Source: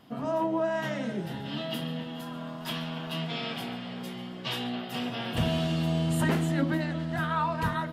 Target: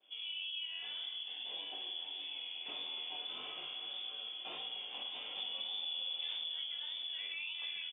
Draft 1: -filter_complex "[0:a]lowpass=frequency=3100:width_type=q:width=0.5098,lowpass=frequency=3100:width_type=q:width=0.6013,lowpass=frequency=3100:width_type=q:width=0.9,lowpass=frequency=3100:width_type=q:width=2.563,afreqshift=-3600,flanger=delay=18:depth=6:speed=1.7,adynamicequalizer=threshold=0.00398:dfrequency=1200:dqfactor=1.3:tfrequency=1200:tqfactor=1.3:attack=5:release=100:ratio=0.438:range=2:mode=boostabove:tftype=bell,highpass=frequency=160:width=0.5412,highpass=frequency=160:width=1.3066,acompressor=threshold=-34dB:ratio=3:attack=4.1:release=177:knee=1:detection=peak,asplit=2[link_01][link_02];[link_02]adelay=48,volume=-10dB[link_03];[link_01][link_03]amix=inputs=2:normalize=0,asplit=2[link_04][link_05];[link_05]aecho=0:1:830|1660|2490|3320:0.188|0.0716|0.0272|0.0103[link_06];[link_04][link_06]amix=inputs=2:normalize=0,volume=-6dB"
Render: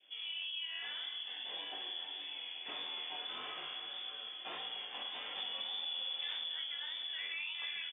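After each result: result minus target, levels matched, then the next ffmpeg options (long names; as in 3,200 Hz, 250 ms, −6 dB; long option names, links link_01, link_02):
1,000 Hz band +4.5 dB; 2,000 Hz band +3.0 dB
-filter_complex "[0:a]lowpass=frequency=3100:width_type=q:width=0.5098,lowpass=frequency=3100:width_type=q:width=0.6013,lowpass=frequency=3100:width_type=q:width=0.9,lowpass=frequency=3100:width_type=q:width=2.563,afreqshift=-3600,flanger=delay=18:depth=6:speed=1.7,adynamicequalizer=threshold=0.00398:dfrequency=2800:dqfactor=1.3:tfrequency=2800:tqfactor=1.3:attack=5:release=100:ratio=0.438:range=2:mode=boostabove:tftype=bell,highpass=frequency=160:width=0.5412,highpass=frequency=160:width=1.3066,acompressor=threshold=-34dB:ratio=3:attack=4.1:release=177:knee=1:detection=peak,asplit=2[link_01][link_02];[link_02]adelay=48,volume=-10dB[link_03];[link_01][link_03]amix=inputs=2:normalize=0,asplit=2[link_04][link_05];[link_05]aecho=0:1:830|1660|2490|3320:0.188|0.0716|0.0272|0.0103[link_06];[link_04][link_06]amix=inputs=2:normalize=0,volume=-6dB"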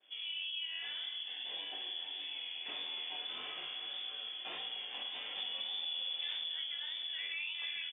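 2,000 Hz band +2.5 dB
-filter_complex "[0:a]lowpass=frequency=3100:width_type=q:width=0.5098,lowpass=frequency=3100:width_type=q:width=0.6013,lowpass=frequency=3100:width_type=q:width=0.9,lowpass=frequency=3100:width_type=q:width=2.563,afreqshift=-3600,flanger=delay=18:depth=6:speed=1.7,adynamicequalizer=threshold=0.00398:dfrequency=2800:dqfactor=1.3:tfrequency=2800:tqfactor=1.3:attack=5:release=100:ratio=0.438:range=2:mode=boostabove:tftype=bell,highpass=frequency=160:width=0.5412,highpass=frequency=160:width=1.3066,acompressor=threshold=-34dB:ratio=3:attack=4.1:release=177:knee=1:detection=peak,equalizer=frequency=1800:width=2.6:gain=-10.5,asplit=2[link_01][link_02];[link_02]adelay=48,volume=-10dB[link_03];[link_01][link_03]amix=inputs=2:normalize=0,asplit=2[link_04][link_05];[link_05]aecho=0:1:830|1660|2490|3320:0.188|0.0716|0.0272|0.0103[link_06];[link_04][link_06]amix=inputs=2:normalize=0,volume=-6dB"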